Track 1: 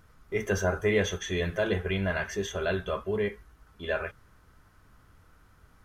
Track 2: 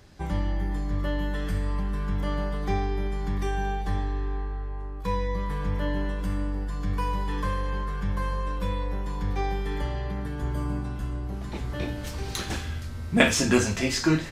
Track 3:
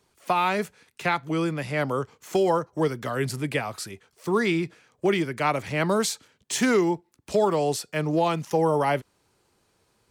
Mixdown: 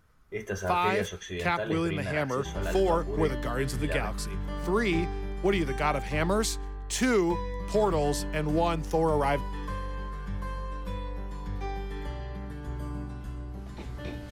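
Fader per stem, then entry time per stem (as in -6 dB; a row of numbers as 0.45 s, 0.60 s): -5.5 dB, -6.5 dB, -3.5 dB; 0.00 s, 2.25 s, 0.40 s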